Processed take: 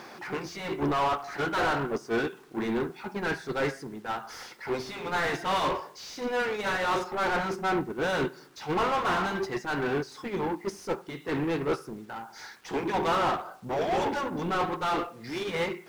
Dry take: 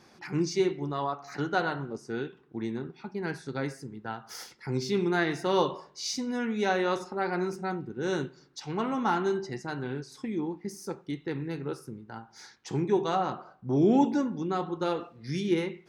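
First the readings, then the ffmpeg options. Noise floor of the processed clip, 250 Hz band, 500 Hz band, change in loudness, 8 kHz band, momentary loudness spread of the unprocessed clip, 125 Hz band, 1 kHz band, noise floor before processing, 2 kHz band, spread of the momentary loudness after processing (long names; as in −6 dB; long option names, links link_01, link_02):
−51 dBFS, −3.5 dB, +0.5 dB, +1.0 dB, −2.0 dB, 12 LU, −3.0 dB, +4.0 dB, −59 dBFS, +5.0 dB, 9 LU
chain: -filter_complex "[0:a]afftfilt=real='re*lt(hypot(re,im),0.251)':imag='im*lt(hypot(re,im),0.251)':win_size=1024:overlap=0.75,acompressor=mode=upward:threshold=-48dB:ratio=2.5,asplit=2[link_01][link_02];[link_02]highpass=frequency=720:poles=1,volume=32dB,asoftclip=type=tanh:threshold=-16.5dB[link_03];[link_01][link_03]amix=inputs=2:normalize=0,lowpass=frequency=1700:poles=1,volume=-6dB,agate=range=-11dB:threshold=-25dB:ratio=16:detection=peak,acrusher=bits=9:mix=0:aa=0.000001"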